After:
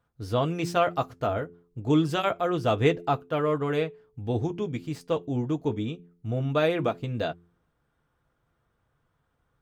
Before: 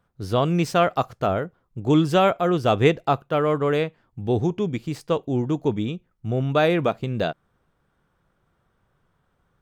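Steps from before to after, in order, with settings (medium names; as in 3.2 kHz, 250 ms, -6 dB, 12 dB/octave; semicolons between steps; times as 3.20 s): comb of notches 190 Hz; de-hum 86.53 Hz, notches 5; trim -3.5 dB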